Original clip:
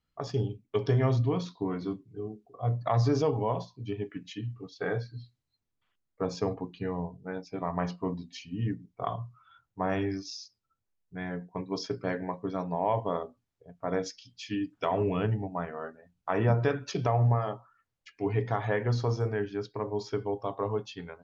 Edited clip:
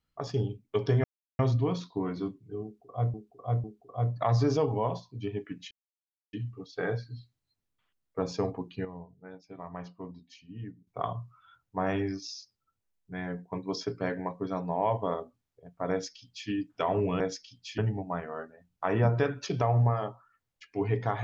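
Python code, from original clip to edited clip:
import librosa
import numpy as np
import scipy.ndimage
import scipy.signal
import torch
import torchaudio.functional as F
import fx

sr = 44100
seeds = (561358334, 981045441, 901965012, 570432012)

y = fx.edit(x, sr, fx.insert_silence(at_s=1.04, length_s=0.35),
    fx.repeat(start_s=2.29, length_s=0.5, count=3),
    fx.insert_silence(at_s=4.36, length_s=0.62),
    fx.clip_gain(start_s=6.88, length_s=2.02, db=-10.0),
    fx.duplicate(start_s=13.94, length_s=0.58, to_s=15.23), tone=tone)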